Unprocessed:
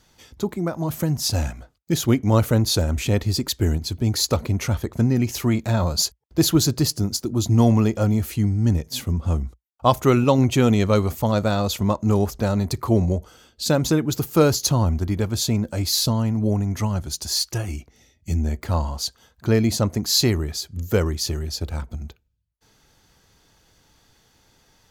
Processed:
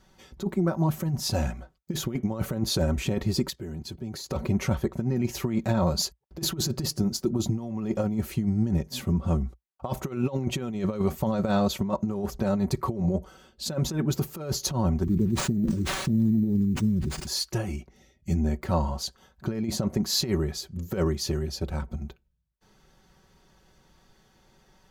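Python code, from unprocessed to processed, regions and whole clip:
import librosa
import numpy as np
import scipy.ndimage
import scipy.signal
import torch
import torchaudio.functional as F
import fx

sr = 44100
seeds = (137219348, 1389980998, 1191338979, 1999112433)

y = fx.chain(x, sr, fx.level_steps(step_db=16),
    fx.highpass(hz=70.0, slope=12), at=(3.5, 4.3))
y = fx.chain(y, sr, fx.cheby2_bandstop(low_hz=660.0, high_hz=4500.0, order=4, stop_db=40),
    fx.sample_hold(seeds[0], rate_hz=14000.0, jitter_pct=0),
    fx.sustainer(db_per_s=42.0), at=(15.03, 17.27))
y = fx.high_shelf(y, sr, hz=2300.0, db=-9.0)
y = y + 0.58 * np.pad(y, (int(5.3 * sr / 1000.0), 0))[:len(y)]
y = fx.over_compress(y, sr, threshold_db=-21.0, ratio=-0.5)
y = F.gain(torch.from_numpy(y), -3.0).numpy()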